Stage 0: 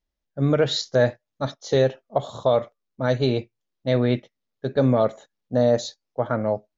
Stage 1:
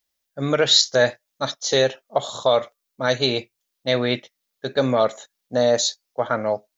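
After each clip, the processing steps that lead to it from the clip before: tilt +3.5 dB/oct; gain +4 dB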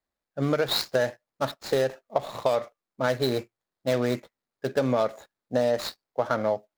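median filter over 15 samples; compressor, threshold -20 dBFS, peak gain reduction 7.5 dB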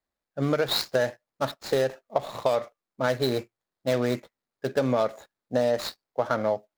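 nothing audible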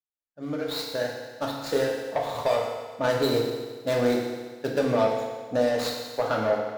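opening faded in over 2.02 s; soft clip -17.5 dBFS, distortion -17 dB; FDN reverb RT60 1.5 s, low-frequency decay 0.85×, high-frequency decay 1×, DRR -1.5 dB

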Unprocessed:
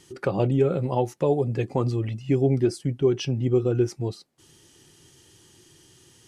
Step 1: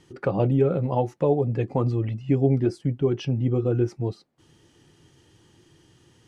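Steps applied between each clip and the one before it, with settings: LPF 1700 Hz 6 dB/oct; notch 380 Hz, Q 12; gain +1.5 dB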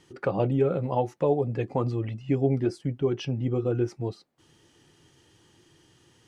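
low shelf 350 Hz -5.5 dB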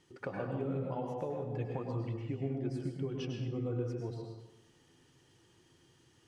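compressor, threshold -27 dBFS, peak gain reduction 9 dB; plate-style reverb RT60 1 s, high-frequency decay 0.65×, pre-delay 90 ms, DRR 0.5 dB; gain -8.5 dB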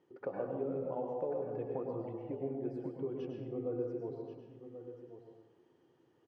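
band-pass 500 Hz, Q 1.2; echo 1.085 s -11.5 dB; gain +2.5 dB

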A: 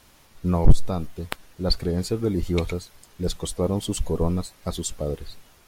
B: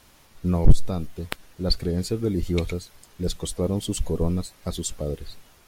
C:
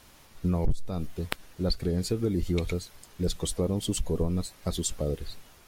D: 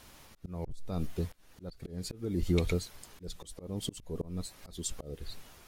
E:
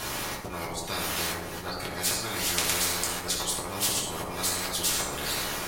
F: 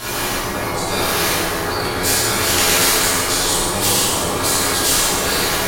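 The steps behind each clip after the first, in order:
dynamic EQ 950 Hz, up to -6 dB, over -41 dBFS, Q 1.1
compressor 4:1, threshold -23 dBFS, peak gain reduction 15 dB
auto swell 0.395 s
in parallel at -8 dB: crossover distortion -46.5 dBFS; on the sum: reverb RT60 0.85 s, pre-delay 4 ms, DRR -5 dB; spectral compressor 10:1; gain -1 dB
plate-style reverb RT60 2.6 s, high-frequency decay 0.6×, DRR -9 dB; gain +4 dB

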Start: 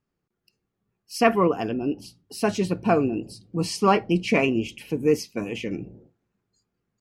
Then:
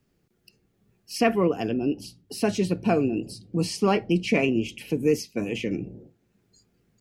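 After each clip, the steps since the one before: bell 1100 Hz -8 dB 1 oct; three-band squash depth 40%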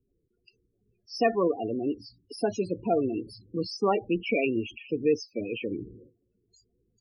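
bell 170 Hz -10.5 dB 1.2 oct; loudest bins only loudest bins 16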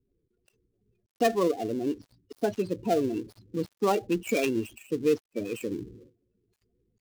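switching dead time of 0.12 ms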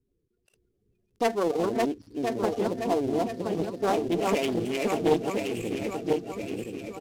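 regenerating reverse delay 0.511 s, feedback 68%, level -2 dB; downsampling 32000 Hz; Doppler distortion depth 0.44 ms; gain -1 dB

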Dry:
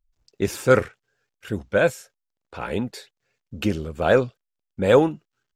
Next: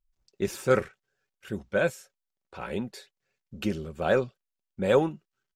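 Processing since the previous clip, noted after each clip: comb 5.3 ms, depth 34%; gain -6.5 dB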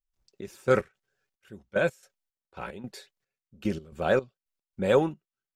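step gate ".xx..x.xxx...x" 111 bpm -12 dB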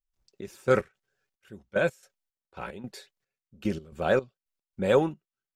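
nothing audible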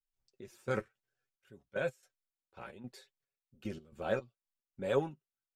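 flange 0.61 Hz, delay 7 ms, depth 2.2 ms, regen +30%; gain -6 dB

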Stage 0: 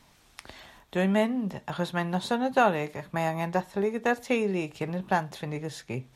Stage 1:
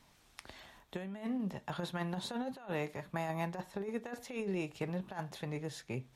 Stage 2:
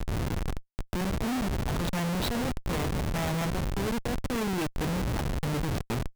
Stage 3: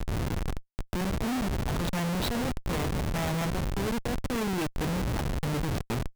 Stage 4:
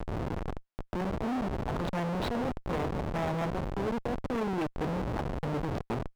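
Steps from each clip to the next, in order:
negative-ratio compressor -28 dBFS, ratio -0.5; gain -8.5 dB
wind noise 140 Hz -40 dBFS; Schmitt trigger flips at -41 dBFS; gain +8.5 dB
nothing audible
overdrive pedal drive 17 dB, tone 1200 Hz, clips at -22 dBFS

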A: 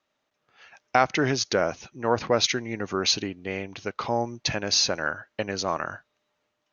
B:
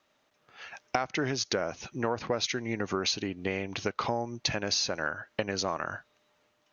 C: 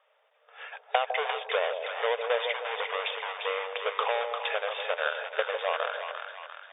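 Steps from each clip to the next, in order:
compressor 6:1, threshold -33 dBFS, peak gain reduction 18 dB; gain +6 dB
half-waves squared off; split-band echo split 810 Hz, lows 0.154 s, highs 0.348 s, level -6 dB; FFT band-pass 430–3700 Hz

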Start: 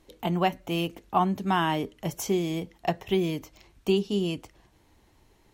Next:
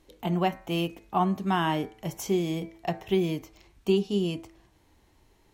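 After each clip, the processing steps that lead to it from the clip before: de-hum 109.8 Hz, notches 23; harmonic-percussive split harmonic +4 dB; gain -3.5 dB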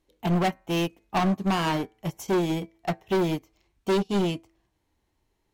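hard clip -28 dBFS, distortion -7 dB; upward expander 2.5:1, over -42 dBFS; gain +8.5 dB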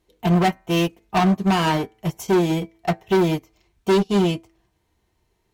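notch comb 280 Hz; gain +6.5 dB

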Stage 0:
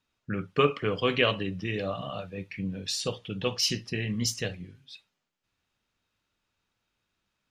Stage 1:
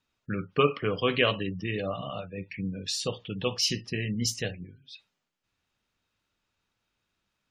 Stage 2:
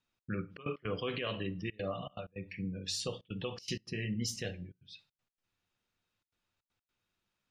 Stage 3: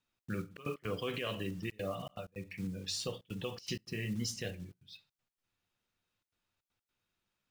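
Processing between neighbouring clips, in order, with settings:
spectral gate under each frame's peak -30 dB strong
reverb RT60 0.45 s, pre-delay 6 ms, DRR 11 dB; step gate "xx.xxx.x.xxxxxxx" 159 bpm -24 dB; limiter -20 dBFS, peak gain reduction 11.5 dB; gain -5.5 dB
block floating point 5-bit; gain -1 dB

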